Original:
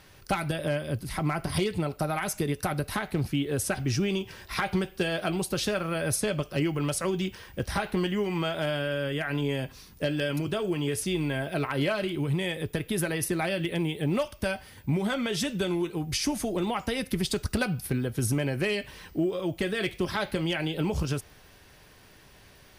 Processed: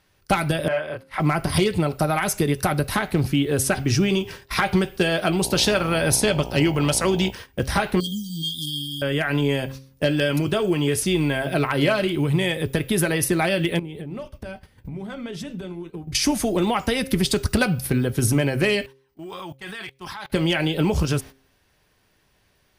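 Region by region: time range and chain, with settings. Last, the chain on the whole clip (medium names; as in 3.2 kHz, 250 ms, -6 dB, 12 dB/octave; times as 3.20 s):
0.68–1.20 s: three-band isolator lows -20 dB, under 520 Hz, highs -19 dB, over 2.7 kHz + doubling 26 ms -2 dB
5.42–7.30 s: peaking EQ 4.1 kHz +4.5 dB 1.6 oct + mains buzz 60 Hz, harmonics 16, -42 dBFS -2 dB/octave
8.00–9.02 s: brick-wall FIR band-stop 310–3100 Hz + tilt EQ +2.5 dB/octave
13.79–16.15 s: tilt EQ -2 dB/octave + compression 8:1, threshold -37 dBFS + hum notches 50/100/150/200/250/300/350 Hz
18.86–20.30 s: resonant low shelf 690 Hz -7 dB, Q 3 + level held to a coarse grid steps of 21 dB
whole clip: gate -43 dBFS, range -17 dB; de-hum 133.7 Hz, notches 4; trim +7.5 dB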